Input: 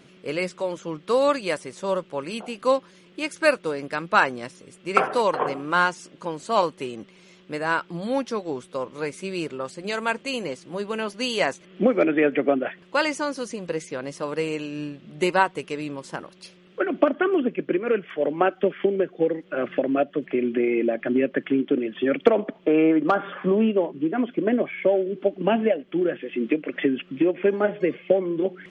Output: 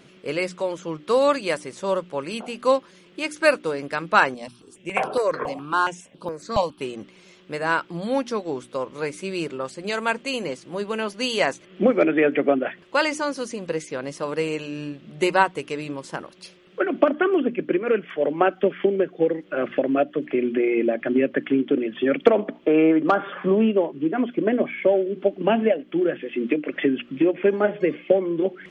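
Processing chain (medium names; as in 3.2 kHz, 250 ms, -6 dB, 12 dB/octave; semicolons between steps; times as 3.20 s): hum notches 60/120/180/240/300 Hz; 4.34–6.81 s: stepped phaser 7.2 Hz 380–6700 Hz; trim +1.5 dB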